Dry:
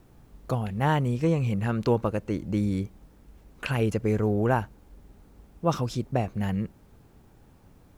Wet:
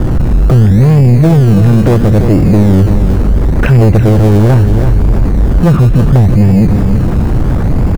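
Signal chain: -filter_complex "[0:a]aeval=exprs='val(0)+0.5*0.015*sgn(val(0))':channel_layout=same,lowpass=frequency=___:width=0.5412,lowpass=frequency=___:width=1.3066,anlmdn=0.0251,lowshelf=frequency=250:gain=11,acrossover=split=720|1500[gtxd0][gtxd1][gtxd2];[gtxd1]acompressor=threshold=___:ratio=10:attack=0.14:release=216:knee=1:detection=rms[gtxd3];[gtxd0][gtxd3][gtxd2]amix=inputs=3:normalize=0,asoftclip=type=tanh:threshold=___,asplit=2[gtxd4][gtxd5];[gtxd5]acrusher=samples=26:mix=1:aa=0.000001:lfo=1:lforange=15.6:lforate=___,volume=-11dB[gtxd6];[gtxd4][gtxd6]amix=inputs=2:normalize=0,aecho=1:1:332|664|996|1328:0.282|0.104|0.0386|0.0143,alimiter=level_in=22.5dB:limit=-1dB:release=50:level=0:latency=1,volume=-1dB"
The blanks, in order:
2000, 2000, -45dB, -20.5dB, 0.73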